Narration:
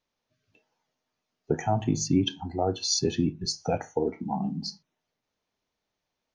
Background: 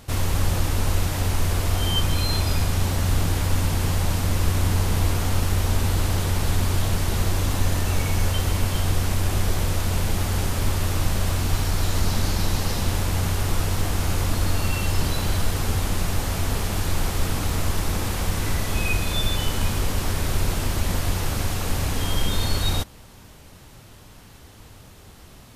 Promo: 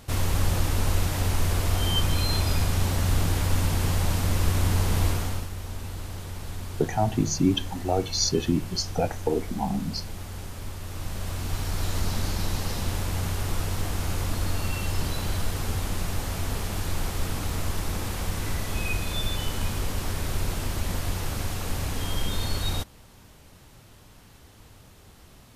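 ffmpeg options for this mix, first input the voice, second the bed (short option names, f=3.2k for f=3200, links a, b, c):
-filter_complex "[0:a]adelay=5300,volume=1.5dB[a];[1:a]volume=6.5dB,afade=t=out:st=5.06:d=0.43:silence=0.266073,afade=t=in:st=10.83:d=1.04:silence=0.375837[b];[a][b]amix=inputs=2:normalize=0"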